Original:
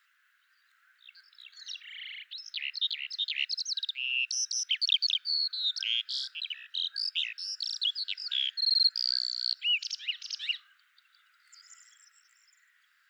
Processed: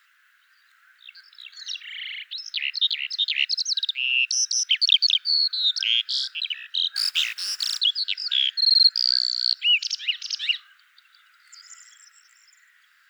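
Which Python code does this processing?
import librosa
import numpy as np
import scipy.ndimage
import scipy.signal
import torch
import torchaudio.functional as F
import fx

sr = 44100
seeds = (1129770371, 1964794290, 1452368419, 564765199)

y = fx.spec_flatten(x, sr, power=0.55, at=(6.95, 7.79), fade=0.02)
y = y * 10.0 ** (8.5 / 20.0)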